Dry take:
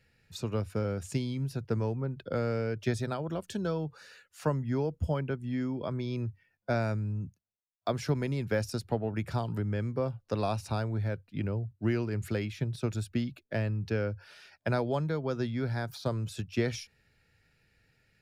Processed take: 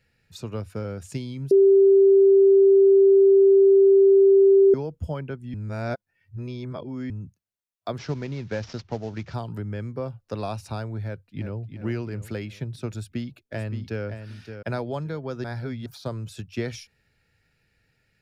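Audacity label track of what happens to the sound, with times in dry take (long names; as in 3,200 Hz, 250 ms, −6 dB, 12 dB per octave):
1.510000	4.740000	beep over 391 Hz −11.5 dBFS
5.540000	7.100000	reverse
7.980000	9.340000	variable-slope delta modulation 32 kbit/s
11.020000	11.660000	delay throw 350 ms, feedback 45%, level −8 dB
12.950000	14.050000	delay throw 570 ms, feedback 20%, level −8.5 dB
15.440000	15.860000	reverse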